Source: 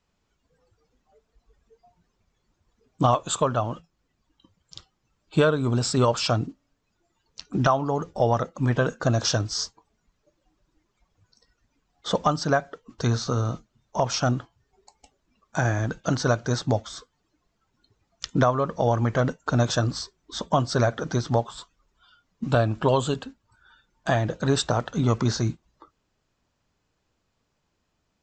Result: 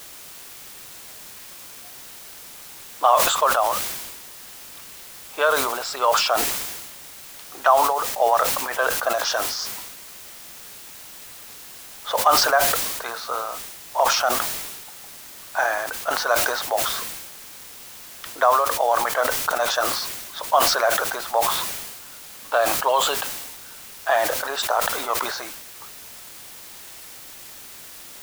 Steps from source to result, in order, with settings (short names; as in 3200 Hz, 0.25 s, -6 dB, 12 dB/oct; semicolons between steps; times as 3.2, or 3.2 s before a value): HPF 650 Hz 24 dB/oct; low-pass opened by the level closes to 1900 Hz, open at -22.5 dBFS; high shelf 3700 Hz -11 dB; in parallel at -9 dB: requantised 6-bit, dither triangular; on the sum: sustainer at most 38 dB/s; gain +4 dB